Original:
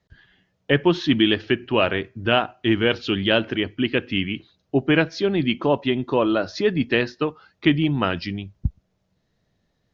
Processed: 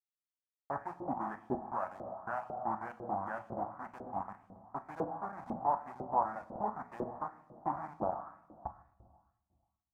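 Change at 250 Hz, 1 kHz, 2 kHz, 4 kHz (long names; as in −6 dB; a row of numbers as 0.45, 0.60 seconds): −23.5 dB, −5.0 dB, −25.0 dB, below −40 dB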